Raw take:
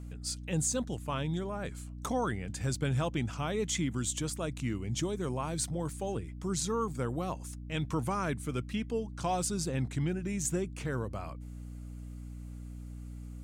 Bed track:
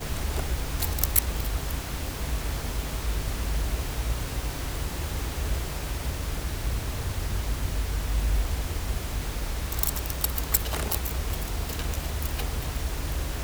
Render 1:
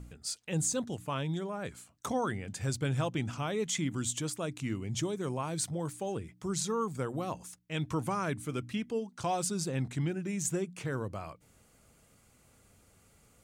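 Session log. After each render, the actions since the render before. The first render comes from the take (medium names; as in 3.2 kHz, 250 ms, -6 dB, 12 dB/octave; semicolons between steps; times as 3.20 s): de-hum 60 Hz, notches 5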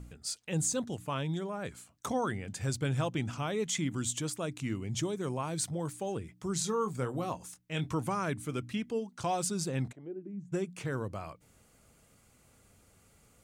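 6.53–7.92 s: doubling 24 ms -9 dB; 9.91–10.52 s: band-pass filter 640 Hz -> 170 Hz, Q 3.8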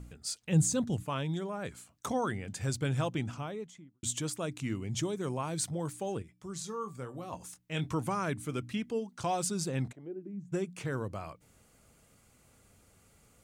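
0.42–1.03 s: tone controls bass +9 dB, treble 0 dB; 3.06–4.03 s: studio fade out; 6.22–7.33 s: feedback comb 580 Hz, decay 0.28 s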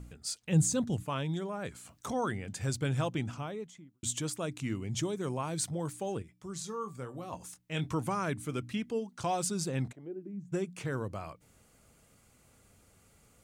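1.75–2.19 s: transient shaper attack -4 dB, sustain +9 dB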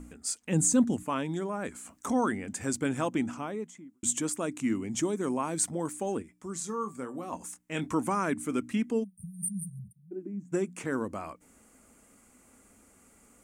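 9.04–10.12 s: spectral selection erased 210–8600 Hz; graphic EQ 125/250/1000/2000/4000/8000 Hz -12/+12/+4/+4/-7/+8 dB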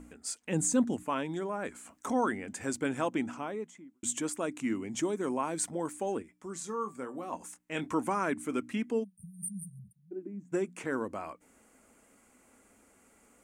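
tone controls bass -7 dB, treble -5 dB; band-stop 1.2 kHz, Q 23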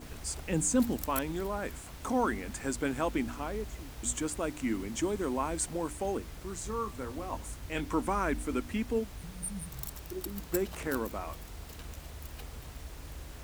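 add bed track -14.5 dB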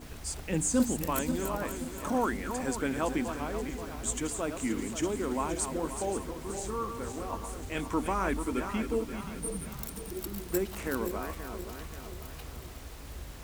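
backward echo that repeats 264 ms, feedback 68%, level -8 dB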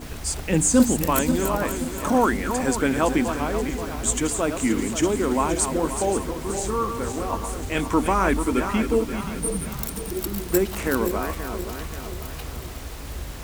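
trim +9.5 dB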